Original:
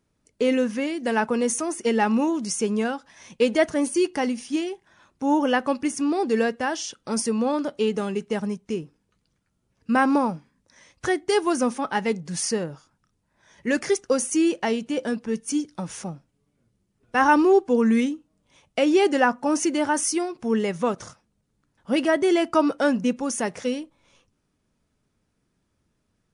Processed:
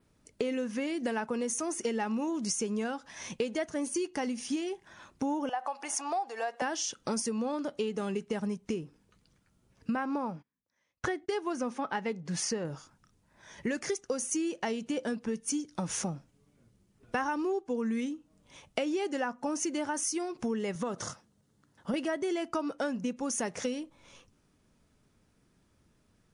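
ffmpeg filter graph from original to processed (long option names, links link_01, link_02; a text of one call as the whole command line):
ffmpeg -i in.wav -filter_complex "[0:a]asettb=1/sr,asplit=3[link_01][link_02][link_03];[link_01]atrim=end=5.494[link_04];[link_02]atrim=start=5.49:end=6.62,asetpts=PTS-STARTPTS,afade=type=in:duration=0.004:curve=qsin,afade=type=out:start_time=1.126:duration=0.004:curve=qsin,acompressor=threshold=-28dB:ratio=4:attack=3.2:release=140:knee=1:detection=peak,highpass=frequency=770:width_type=q:width=5.4[link_05];[link_03]atrim=start=6.616[link_06];[link_04][link_05]acrossfade=duration=0.004:curve1=hsin:curve2=qsin[link_07];[link_07][link_06]acrossfade=duration=0.004:curve1=qsin:curve2=hsin,asettb=1/sr,asplit=3[link_08][link_09][link_10];[link_08]atrim=end=9.954[link_11];[link_09]atrim=start=9.95:end=12.65,asetpts=PTS-STARTPTS,afade=type=in:duration=0.004:curve=qsin,afade=type=out:start_time=2.696:duration=0.004:curve=qsin,highpass=frequency=470:poles=1,aemphasis=mode=reproduction:type=bsi,agate=range=-26dB:threshold=-50dB:ratio=16:release=100:detection=peak[link_12];[link_10]atrim=start=12.646[link_13];[link_11][link_12]acrossfade=duration=0.004:curve1=hsin:curve2=qsin[link_14];[link_14][link_13]acrossfade=duration=0.004:curve1=qsin:curve2=hsin,asettb=1/sr,asplit=3[link_15][link_16][link_17];[link_15]atrim=end=20.754[link_18];[link_16]atrim=start=20.75:end=21.94,asetpts=PTS-STARTPTS,afade=type=in:duration=0.004:curve=qsin,afade=type=out:start_time=1.186:duration=0.004:curve=qsin,highpass=85,equalizer=frequency=2400:width=7.9:gain=-7.5,acompressor=threshold=-26dB:ratio=3:attack=3.2:release=140:knee=1:detection=peak[link_19];[link_17]atrim=start=21.936[link_20];[link_18][link_19]acrossfade=duration=0.004:curve1=hsin:curve2=qsin[link_21];[link_21][link_20]acrossfade=duration=0.004:curve1=qsin:curve2=hsin,adynamicequalizer=threshold=0.00501:dfrequency=6400:dqfactor=3:tfrequency=6400:tqfactor=3:attack=5:release=100:ratio=0.375:range=2.5:mode=boostabove:tftype=bell,acompressor=threshold=-34dB:ratio=8,volume=4dB" out.wav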